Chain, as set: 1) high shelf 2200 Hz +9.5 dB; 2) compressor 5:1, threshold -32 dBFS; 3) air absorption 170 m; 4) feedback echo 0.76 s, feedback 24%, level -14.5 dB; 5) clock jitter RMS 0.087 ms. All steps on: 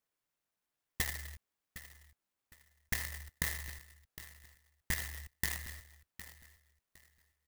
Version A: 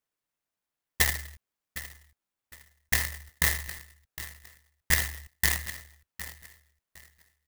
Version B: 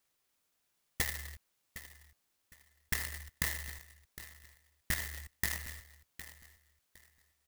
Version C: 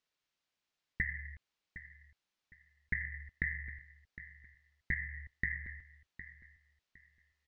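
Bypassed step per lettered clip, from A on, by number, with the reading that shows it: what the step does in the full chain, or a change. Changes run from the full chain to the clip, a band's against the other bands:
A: 2, mean gain reduction 6.5 dB; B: 3, loudness change +1.0 LU; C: 5, 500 Hz band -8.5 dB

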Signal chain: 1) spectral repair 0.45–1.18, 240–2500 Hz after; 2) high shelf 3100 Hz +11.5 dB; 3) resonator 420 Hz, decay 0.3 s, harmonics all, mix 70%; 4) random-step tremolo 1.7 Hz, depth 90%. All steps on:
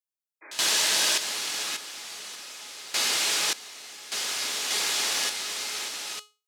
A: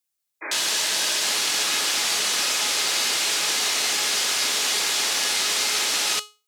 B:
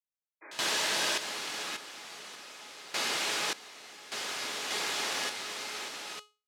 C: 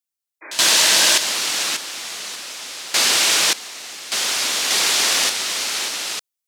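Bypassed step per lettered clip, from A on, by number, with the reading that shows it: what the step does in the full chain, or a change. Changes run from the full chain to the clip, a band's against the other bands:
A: 4, momentary loudness spread change -15 LU; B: 2, 8 kHz band -8.5 dB; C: 3, loudness change +9.0 LU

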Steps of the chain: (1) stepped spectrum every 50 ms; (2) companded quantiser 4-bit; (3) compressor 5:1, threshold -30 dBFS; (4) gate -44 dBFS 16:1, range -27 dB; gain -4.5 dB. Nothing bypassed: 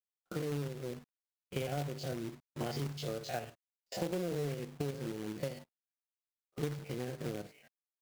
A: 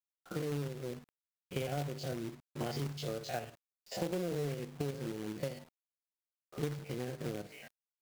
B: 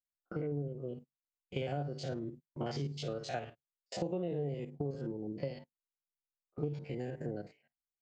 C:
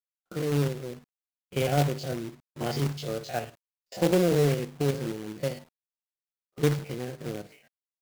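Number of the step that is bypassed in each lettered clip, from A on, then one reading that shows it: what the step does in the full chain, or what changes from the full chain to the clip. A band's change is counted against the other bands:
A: 4, momentary loudness spread change +2 LU; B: 2, distortion -14 dB; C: 3, mean gain reduction 6.5 dB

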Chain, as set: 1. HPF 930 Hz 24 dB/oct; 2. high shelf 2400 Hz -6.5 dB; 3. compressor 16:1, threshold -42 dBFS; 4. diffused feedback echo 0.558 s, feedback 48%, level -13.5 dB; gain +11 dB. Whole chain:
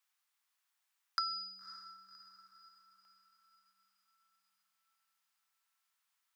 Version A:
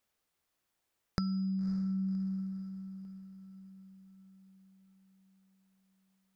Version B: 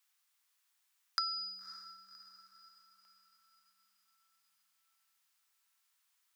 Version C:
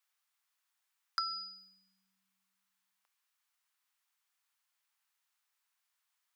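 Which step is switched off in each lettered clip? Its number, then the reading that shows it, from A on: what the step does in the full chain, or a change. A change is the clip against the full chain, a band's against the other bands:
1, crest factor change -5.5 dB; 2, crest factor change +2.5 dB; 4, echo-to-direct -12.5 dB to none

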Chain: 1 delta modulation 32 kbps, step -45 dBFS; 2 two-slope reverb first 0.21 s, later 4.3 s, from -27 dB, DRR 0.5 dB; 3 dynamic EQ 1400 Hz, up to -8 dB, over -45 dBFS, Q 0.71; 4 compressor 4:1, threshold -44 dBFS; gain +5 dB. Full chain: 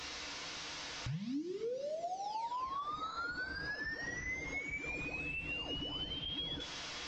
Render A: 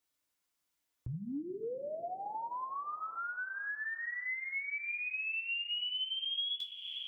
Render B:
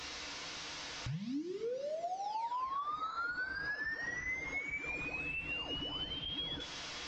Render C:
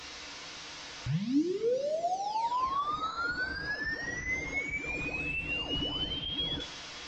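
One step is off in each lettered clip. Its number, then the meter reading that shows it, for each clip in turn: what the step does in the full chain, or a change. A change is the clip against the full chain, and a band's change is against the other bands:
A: 1, 4 kHz band +5.5 dB; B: 3, 2 kHz band +2.0 dB; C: 4, mean gain reduction 5.5 dB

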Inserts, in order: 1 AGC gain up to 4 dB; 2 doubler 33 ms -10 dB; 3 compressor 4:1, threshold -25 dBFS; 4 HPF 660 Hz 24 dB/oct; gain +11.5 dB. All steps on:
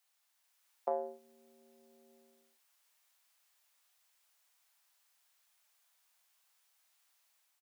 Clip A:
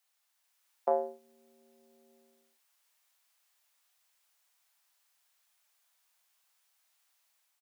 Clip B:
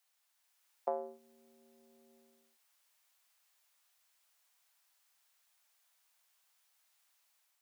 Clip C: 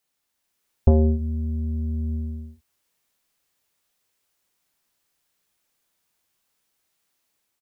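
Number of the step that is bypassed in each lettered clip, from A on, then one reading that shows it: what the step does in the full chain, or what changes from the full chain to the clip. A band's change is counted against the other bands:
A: 3, momentary loudness spread change -5 LU; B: 2, crest factor change +1.5 dB; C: 4, crest factor change -8.0 dB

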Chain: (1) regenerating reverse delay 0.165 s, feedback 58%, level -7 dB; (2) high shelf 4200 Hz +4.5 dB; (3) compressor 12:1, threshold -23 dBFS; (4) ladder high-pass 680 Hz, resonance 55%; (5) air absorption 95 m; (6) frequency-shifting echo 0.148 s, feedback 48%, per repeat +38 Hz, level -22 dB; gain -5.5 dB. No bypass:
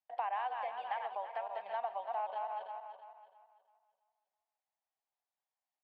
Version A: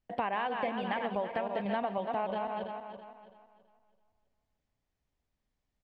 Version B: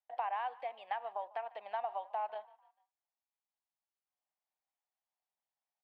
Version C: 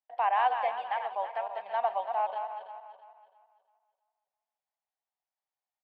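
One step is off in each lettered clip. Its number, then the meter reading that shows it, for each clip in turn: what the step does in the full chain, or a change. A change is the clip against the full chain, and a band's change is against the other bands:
4, 1 kHz band -6.0 dB; 1, momentary loudness spread change -5 LU; 3, mean gain reduction 5.0 dB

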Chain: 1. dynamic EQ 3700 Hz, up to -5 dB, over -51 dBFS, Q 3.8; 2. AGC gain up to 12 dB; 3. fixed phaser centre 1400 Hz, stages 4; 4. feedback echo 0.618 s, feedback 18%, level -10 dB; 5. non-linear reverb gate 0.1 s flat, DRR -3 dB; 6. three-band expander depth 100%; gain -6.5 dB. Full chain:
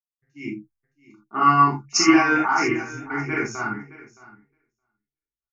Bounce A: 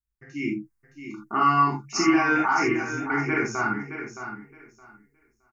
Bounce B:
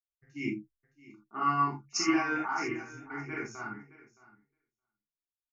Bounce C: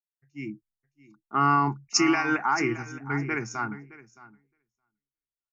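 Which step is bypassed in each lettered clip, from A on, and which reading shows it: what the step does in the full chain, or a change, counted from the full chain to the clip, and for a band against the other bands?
6, 4 kHz band -5.5 dB; 2, momentary loudness spread change -4 LU; 5, momentary loudness spread change -2 LU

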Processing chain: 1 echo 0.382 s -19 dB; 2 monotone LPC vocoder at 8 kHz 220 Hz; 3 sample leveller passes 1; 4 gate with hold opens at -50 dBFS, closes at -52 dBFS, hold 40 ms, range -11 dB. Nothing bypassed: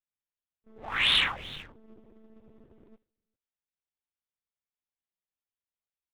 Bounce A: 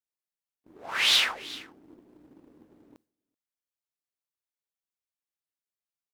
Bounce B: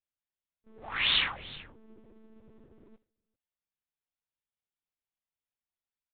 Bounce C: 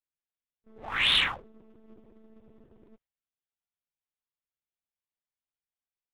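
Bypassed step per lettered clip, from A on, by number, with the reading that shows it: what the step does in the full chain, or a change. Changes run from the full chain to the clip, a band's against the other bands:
2, 8 kHz band +14.0 dB; 3, crest factor change +3.0 dB; 1, momentary loudness spread change -4 LU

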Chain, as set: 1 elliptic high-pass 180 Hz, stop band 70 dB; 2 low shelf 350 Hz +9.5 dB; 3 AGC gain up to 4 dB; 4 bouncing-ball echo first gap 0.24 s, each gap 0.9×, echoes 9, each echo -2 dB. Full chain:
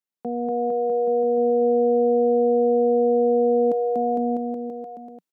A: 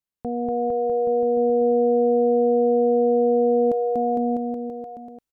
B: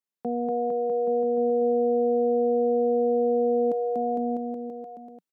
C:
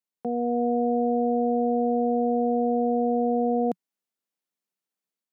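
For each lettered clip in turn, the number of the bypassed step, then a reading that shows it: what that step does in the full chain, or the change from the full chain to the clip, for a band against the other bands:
1, momentary loudness spread change +1 LU; 3, momentary loudness spread change -1 LU; 4, momentary loudness spread change -7 LU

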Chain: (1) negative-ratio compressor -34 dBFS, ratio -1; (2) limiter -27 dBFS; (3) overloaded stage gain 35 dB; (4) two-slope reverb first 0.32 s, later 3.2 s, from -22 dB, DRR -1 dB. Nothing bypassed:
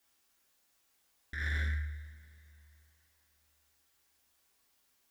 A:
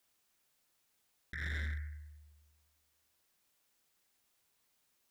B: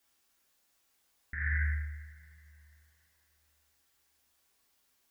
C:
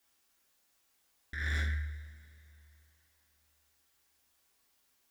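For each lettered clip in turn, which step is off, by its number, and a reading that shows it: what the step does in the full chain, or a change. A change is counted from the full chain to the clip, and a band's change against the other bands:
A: 4, crest factor change -5.5 dB; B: 3, distortion -12 dB; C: 2, momentary loudness spread change -4 LU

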